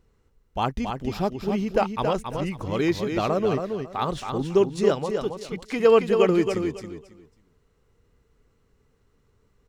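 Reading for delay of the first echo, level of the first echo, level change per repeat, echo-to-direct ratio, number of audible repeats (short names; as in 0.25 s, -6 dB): 0.274 s, -6.0 dB, -13.0 dB, -6.0 dB, 3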